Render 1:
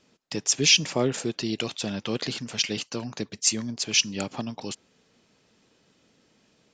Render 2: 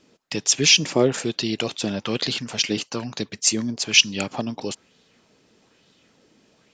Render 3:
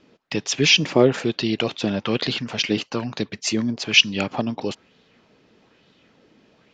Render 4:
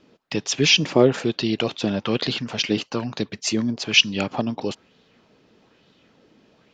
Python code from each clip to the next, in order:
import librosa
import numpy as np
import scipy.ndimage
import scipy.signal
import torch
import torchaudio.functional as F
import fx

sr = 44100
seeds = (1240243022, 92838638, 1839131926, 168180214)

y1 = fx.bell_lfo(x, sr, hz=1.1, low_hz=290.0, high_hz=3900.0, db=7)
y1 = y1 * librosa.db_to_amplitude(3.0)
y2 = scipy.signal.sosfilt(scipy.signal.butter(2, 3600.0, 'lowpass', fs=sr, output='sos'), y1)
y2 = y2 * librosa.db_to_amplitude(3.0)
y3 = fx.peak_eq(y2, sr, hz=2100.0, db=-2.5, octaves=0.77)